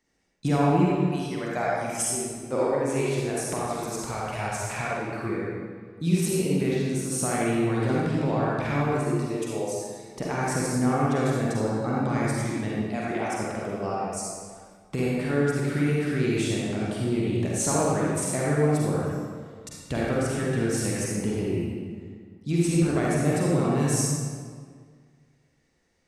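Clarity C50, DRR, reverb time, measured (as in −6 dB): −4.0 dB, −5.5 dB, 1.8 s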